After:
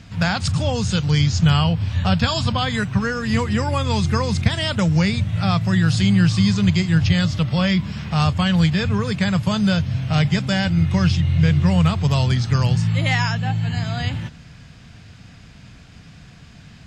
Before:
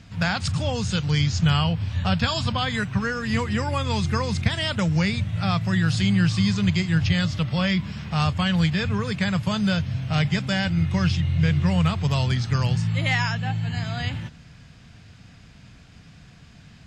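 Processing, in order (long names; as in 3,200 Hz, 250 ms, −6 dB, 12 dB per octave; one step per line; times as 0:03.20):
dynamic equaliser 2,100 Hz, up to −3 dB, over −38 dBFS, Q 0.79
level +4.5 dB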